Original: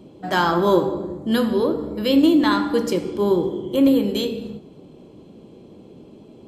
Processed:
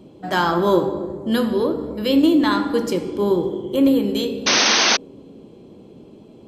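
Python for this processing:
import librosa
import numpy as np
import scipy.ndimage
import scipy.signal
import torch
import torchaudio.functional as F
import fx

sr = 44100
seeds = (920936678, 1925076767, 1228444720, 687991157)

y = fx.echo_banded(x, sr, ms=260, feedback_pct=65, hz=380.0, wet_db=-15)
y = fx.spec_paint(y, sr, seeds[0], shape='noise', start_s=4.46, length_s=0.51, low_hz=200.0, high_hz=6400.0, level_db=-16.0)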